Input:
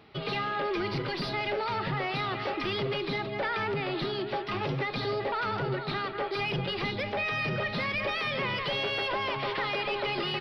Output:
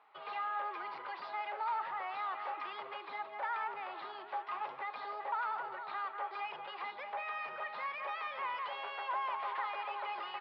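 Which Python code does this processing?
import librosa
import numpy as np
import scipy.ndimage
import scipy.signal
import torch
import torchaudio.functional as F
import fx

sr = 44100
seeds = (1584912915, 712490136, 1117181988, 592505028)

y = fx.ladder_bandpass(x, sr, hz=1100.0, resonance_pct=50)
y = y * 10.0 ** (4.0 / 20.0)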